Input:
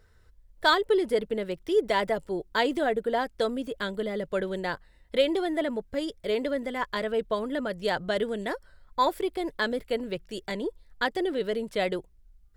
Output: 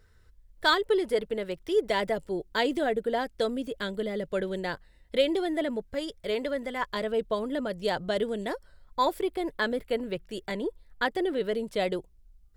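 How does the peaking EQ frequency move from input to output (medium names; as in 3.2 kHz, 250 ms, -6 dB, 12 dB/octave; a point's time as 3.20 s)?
peaking EQ -4 dB 1.2 oct
710 Hz
from 0.85 s 240 Hz
from 1.90 s 1.1 kHz
from 5.88 s 310 Hz
from 6.84 s 1.6 kHz
from 9.20 s 5.6 kHz
from 11.54 s 1.7 kHz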